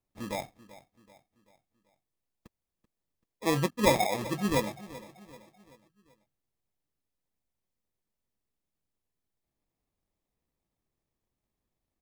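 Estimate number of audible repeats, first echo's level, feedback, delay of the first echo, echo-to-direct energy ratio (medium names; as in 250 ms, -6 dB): 3, -17.5 dB, 46%, 385 ms, -16.5 dB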